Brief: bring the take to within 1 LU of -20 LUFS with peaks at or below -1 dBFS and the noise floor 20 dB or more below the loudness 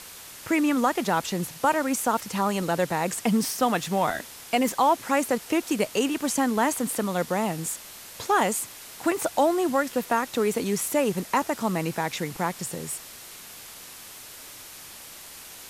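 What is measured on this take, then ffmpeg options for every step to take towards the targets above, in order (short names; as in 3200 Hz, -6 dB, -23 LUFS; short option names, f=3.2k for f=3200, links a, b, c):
noise floor -44 dBFS; noise floor target -46 dBFS; loudness -25.5 LUFS; peak -10.0 dBFS; loudness target -20.0 LUFS
-> -af "afftdn=nr=6:nf=-44"
-af "volume=5.5dB"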